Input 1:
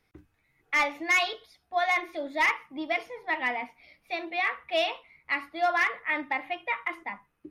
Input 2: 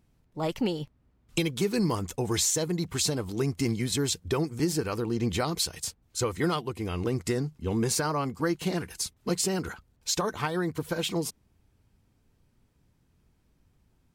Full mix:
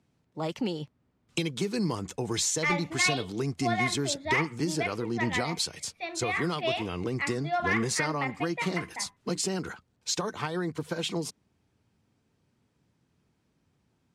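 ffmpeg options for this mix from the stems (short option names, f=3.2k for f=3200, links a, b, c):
-filter_complex "[0:a]adelay=1900,volume=-3.5dB[a];[1:a]acrossover=split=200|3000[b][c][d];[c]acompressor=threshold=-28dB:ratio=6[e];[b][e][d]amix=inputs=3:normalize=0,highpass=120,volume=-0.5dB[f];[a][f]amix=inputs=2:normalize=0,lowpass=8.2k"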